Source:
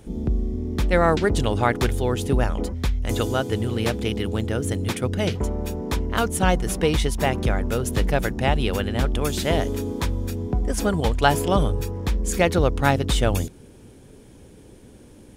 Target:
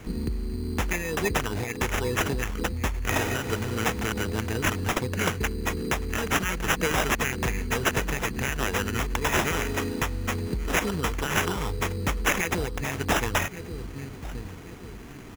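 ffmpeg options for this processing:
ffmpeg -i in.wav -filter_complex "[0:a]lowpass=12000,bass=frequency=250:gain=2,treble=frequency=4000:gain=14,asplit=2[link_01][link_02];[link_02]adelay=1130,lowpass=frequency=2300:poles=1,volume=-18.5dB,asplit=2[link_03][link_04];[link_04]adelay=1130,lowpass=frequency=2300:poles=1,volume=0.37,asplit=2[link_05][link_06];[link_06]adelay=1130,lowpass=frequency=2300:poles=1,volume=0.37[link_07];[link_01][link_03][link_05][link_07]amix=inputs=4:normalize=0,acrossover=split=640[link_08][link_09];[link_08]acompressor=threshold=-28dB:ratio=6[link_10];[link_10][link_09]amix=inputs=2:normalize=0,alimiter=limit=-12.5dB:level=0:latency=1:release=106,afftfilt=real='re*(1-between(b*sr/4096,510,1700))':imag='im*(1-between(b*sr/4096,510,1700))':win_size=4096:overlap=0.75,acrusher=samples=10:mix=1:aa=0.000001,volume=1dB" out.wav

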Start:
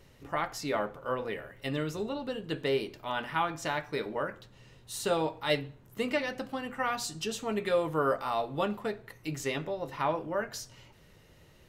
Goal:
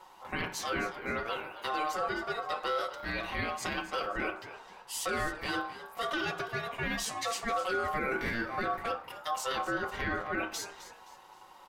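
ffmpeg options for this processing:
ffmpeg -i in.wav -filter_complex "[0:a]equalizer=frequency=65:width=1.2:gain=12,bandreject=frequency=60:width_type=h:width=6,bandreject=frequency=120:width_type=h:width=6,bandreject=frequency=180:width_type=h:width=6,bandreject=frequency=240:width_type=h:width=6,bandreject=frequency=300:width_type=h:width=6,bandreject=frequency=360:width_type=h:width=6,bandreject=frequency=420:width_type=h:width=6,bandreject=frequency=480:width_type=h:width=6,bandreject=frequency=540:width_type=h:width=6,bandreject=frequency=600:width_type=h:width=6,aecho=1:1:5.3:0.81,alimiter=level_in=0.5dB:limit=-24dB:level=0:latency=1:release=12,volume=-0.5dB,aeval=exprs='val(0)*sin(2*PI*920*n/s)':channel_layout=same,asplit=4[link_01][link_02][link_03][link_04];[link_02]adelay=261,afreqshift=77,volume=-14dB[link_05];[link_03]adelay=522,afreqshift=154,volume=-23.6dB[link_06];[link_04]adelay=783,afreqshift=231,volume=-33.3dB[link_07];[link_01][link_05][link_06][link_07]amix=inputs=4:normalize=0,volume=2.5dB" out.wav

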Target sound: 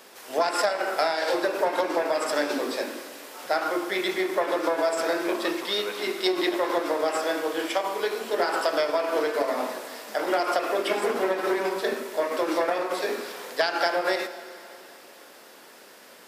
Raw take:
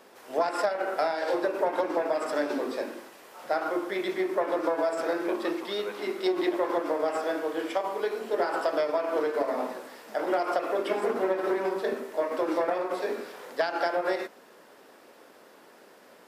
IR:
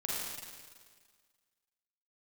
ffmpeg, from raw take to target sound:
-filter_complex "[0:a]highshelf=frequency=2000:gain=11.5,asplit=2[link_01][link_02];[1:a]atrim=start_sample=2205,asetrate=24255,aresample=44100,lowpass=7700[link_03];[link_02][link_03]afir=irnorm=-1:irlink=0,volume=-20.5dB[link_04];[link_01][link_04]amix=inputs=2:normalize=0"

